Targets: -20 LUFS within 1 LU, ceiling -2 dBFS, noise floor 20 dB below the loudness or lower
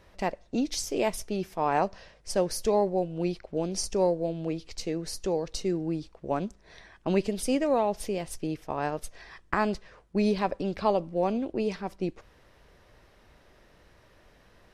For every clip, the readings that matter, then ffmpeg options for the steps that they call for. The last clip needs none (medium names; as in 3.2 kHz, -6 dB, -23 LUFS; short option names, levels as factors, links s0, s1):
loudness -30.0 LUFS; peak level -9.0 dBFS; loudness target -20.0 LUFS
-> -af "volume=3.16,alimiter=limit=0.794:level=0:latency=1"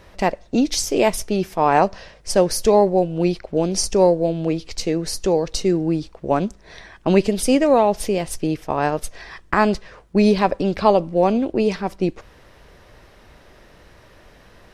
loudness -20.0 LUFS; peak level -2.0 dBFS; noise floor -50 dBFS